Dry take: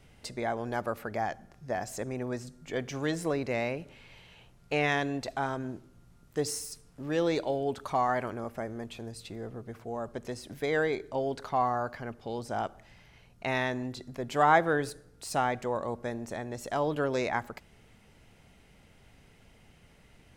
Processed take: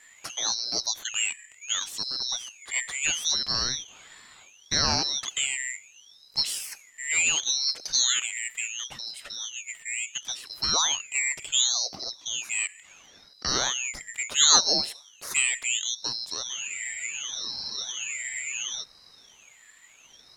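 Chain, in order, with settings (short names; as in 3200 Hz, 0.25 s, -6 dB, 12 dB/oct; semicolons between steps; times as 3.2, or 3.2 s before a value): four-band scrambler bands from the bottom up 2341; spectral freeze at 16.5, 2.31 s; ring modulator with a swept carrier 1600 Hz, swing 70%, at 0.71 Hz; gain +6.5 dB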